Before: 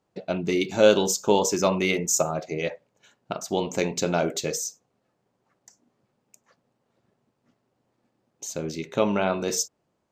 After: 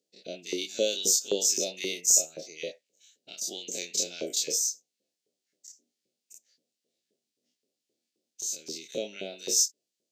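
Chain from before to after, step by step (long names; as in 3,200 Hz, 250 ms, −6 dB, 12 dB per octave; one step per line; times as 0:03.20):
every bin's largest magnitude spread in time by 60 ms
Chebyshev band-stop filter 250–4,500 Hz, order 2
auto-filter high-pass saw up 3.8 Hz 460–1,600 Hz
level −1 dB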